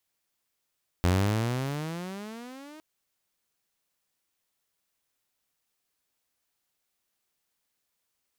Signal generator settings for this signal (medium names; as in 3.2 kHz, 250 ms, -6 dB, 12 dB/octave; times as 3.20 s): gliding synth tone saw, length 1.76 s, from 86.4 Hz, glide +22.5 st, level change -25 dB, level -17.5 dB